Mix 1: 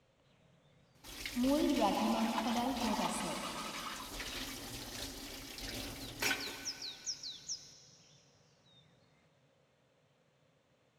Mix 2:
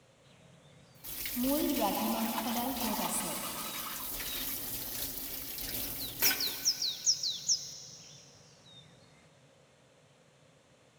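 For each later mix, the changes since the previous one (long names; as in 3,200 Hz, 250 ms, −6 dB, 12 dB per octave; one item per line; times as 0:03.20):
second sound +8.5 dB
master: remove high-frequency loss of the air 72 metres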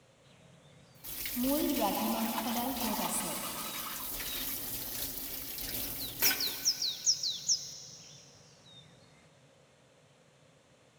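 nothing changed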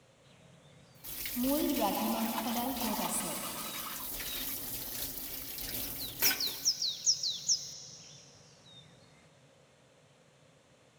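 first sound: send −8.5 dB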